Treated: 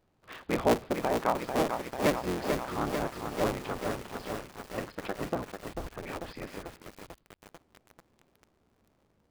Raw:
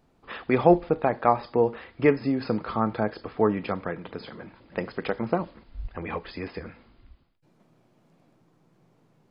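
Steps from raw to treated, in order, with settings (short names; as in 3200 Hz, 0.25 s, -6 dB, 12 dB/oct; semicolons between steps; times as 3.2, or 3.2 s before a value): cycle switcher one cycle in 3, inverted; lo-fi delay 0.443 s, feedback 80%, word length 6-bit, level -5.5 dB; gain -7.5 dB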